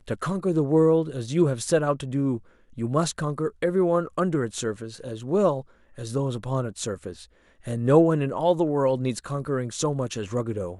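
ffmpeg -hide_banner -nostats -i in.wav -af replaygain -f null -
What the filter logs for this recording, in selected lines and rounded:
track_gain = +4.6 dB
track_peak = 0.382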